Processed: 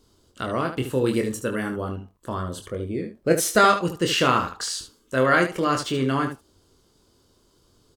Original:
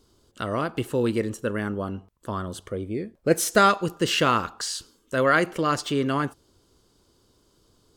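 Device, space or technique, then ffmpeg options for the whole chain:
slapback doubling: -filter_complex "[0:a]asettb=1/sr,asplit=3[a][b][c];[a]atrim=end=1.064[d];[b]atrim=start=1.06:end=1.81,asetpts=PTS-STARTPTS,afade=t=in:d=0.004:c=qsin,afade=t=out:st=0.746:d=0.004:c=qsin,highshelf=f=6.7k:g=9[e];[c]atrim=start=1.806[f];[d][e]acrossfade=d=0.004:c1=hsin:c2=qsin[g];[g][f]acrossfade=d=0.004:c1=qsin:c2=hsin,asplit=3[h][i][j];[i]adelay=23,volume=-5.5dB[k];[j]adelay=74,volume=-9dB[l];[h][k][l]amix=inputs=3:normalize=0"

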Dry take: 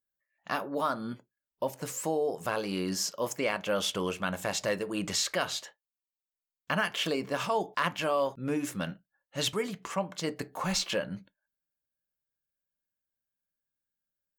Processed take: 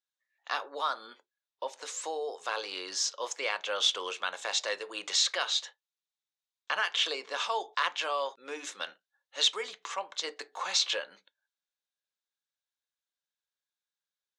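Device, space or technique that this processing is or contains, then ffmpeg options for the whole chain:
phone speaker on a table: -filter_complex "[0:a]asettb=1/sr,asplit=3[a][b][c];[a]atrim=end=1.064[d];[b]atrim=start=1.06:end=1.71,asetpts=PTS-STARTPTS,afade=t=in:d=0.004:c=qsin,afade=t=out:st=0.646:d=0.004:c=qsin,highshelf=f=4.8k:g=-5.5[e];[c]atrim=start=1.706[f];[d][e]acrossfade=d=0.004:c1=hsin:c2=qsin[g];[g][f]acrossfade=d=0.004:c1=qsin:c2=hsin,highpass=f=490:w=0.5412,highpass=f=490:w=1.3066,equalizer=f=620:t=q:w=4:g=-8,equalizer=f=3.7k:t=q:w=4:g=10,equalizer=f=6.2k:t=q:w=4:g=3,lowpass=f=7.7k:w=0.5412,lowpass=f=7.7k:w=1.3066"

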